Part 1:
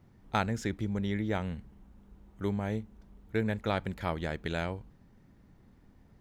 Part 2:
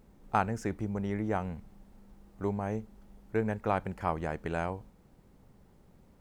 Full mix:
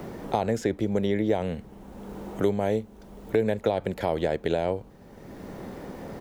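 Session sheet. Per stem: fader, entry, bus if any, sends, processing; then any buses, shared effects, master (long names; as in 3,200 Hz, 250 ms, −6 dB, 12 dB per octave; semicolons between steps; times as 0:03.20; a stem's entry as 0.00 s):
+2.5 dB, 0.00 s, no send, spectral tilt +1.5 dB per octave; brickwall limiter −23 dBFS, peak gain reduction 11 dB
−7.5 dB, 0.7 ms, no send, no processing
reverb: not used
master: parametric band 510 Hz +11 dB 1.5 octaves; multiband upward and downward compressor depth 70%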